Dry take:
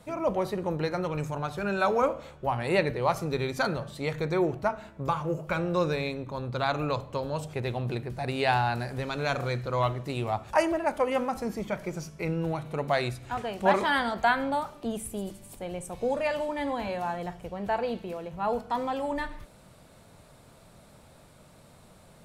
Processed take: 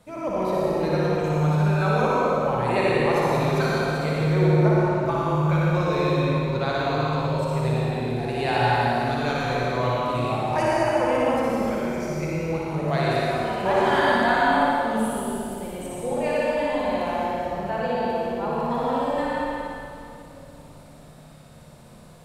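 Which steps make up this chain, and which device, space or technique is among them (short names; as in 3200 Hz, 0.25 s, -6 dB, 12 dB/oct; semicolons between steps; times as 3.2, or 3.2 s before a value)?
tunnel (flutter echo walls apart 10.1 m, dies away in 0.99 s; reverb RT60 2.9 s, pre-delay 68 ms, DRR -4.5 dB); gain -3 dB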